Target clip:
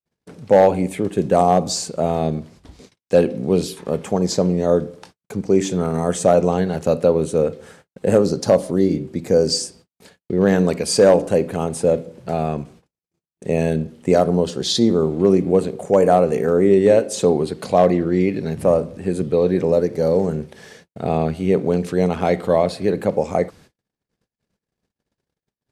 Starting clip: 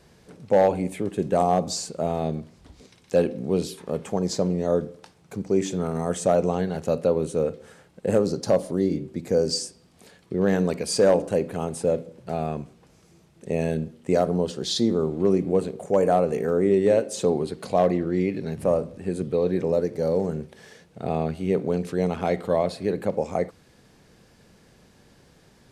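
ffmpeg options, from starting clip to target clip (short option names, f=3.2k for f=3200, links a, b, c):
-af "agate=range=-54dB:threshold=-50dB:ratio=16:detection=peak,atempo=1,volume=6dB"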